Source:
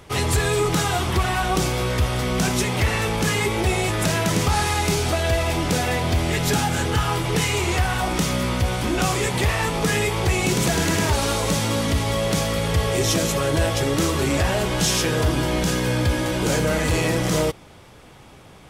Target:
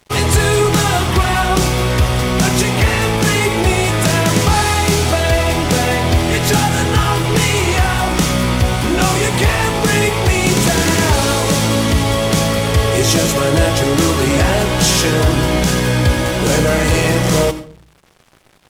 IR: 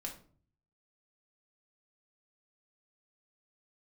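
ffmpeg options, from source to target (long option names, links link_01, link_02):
-filter_complex "[0:a]aeval=exprs='sgn(val(0))*max(abs(val(0))-0.0075,0)':channel_layout=same,asplit=2[link_01][link_02];[1:a]atrim=start_sample=2205,asetrate=48510,aresample=44100,adelay=82[link_03];[link_02][link_03]afir=irnorm=-1:irlink=0,volume=-9.5dB[link_04];[link_01][link_04]amix=inputs=2:normalize=0,volume=7.5dB"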